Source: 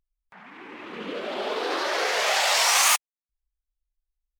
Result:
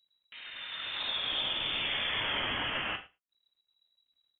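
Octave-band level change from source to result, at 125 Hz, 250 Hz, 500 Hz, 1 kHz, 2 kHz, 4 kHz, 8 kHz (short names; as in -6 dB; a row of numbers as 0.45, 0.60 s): n/a, -8.0 dB, -15.5 dB, -13.5 dB, -8.0 dB, -4.0 dB, under -40 dB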